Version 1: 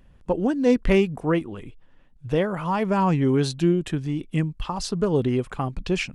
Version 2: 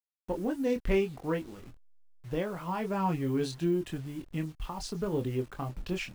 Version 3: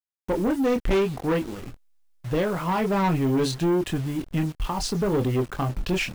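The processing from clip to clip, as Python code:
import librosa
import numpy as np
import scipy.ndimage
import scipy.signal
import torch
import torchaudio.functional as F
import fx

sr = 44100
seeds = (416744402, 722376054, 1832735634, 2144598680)

y1 = fx.delta_hold(x, sr, step_db=-40.0)
y1 = fx.chorus_voices(y1, sr, voices=6, hz=0.68, base_ms=24, depth_ms=2.1, mix_pct=35)
y1 = F.gain(torch.from_numpy(y1), -6.5).numpy()
y2 = fx.leveller(y1, sr, passes=3)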